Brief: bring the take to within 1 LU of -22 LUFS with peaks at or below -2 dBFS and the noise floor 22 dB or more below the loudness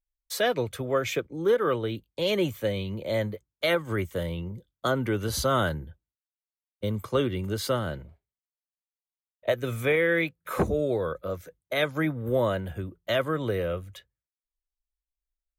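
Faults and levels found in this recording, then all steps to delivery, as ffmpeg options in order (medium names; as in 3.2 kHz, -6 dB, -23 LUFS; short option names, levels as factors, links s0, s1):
loudness -28.0 LUFS; peak level -12.0 dBFS; loudness target -22.0 LUFS
-> -af "volume=2"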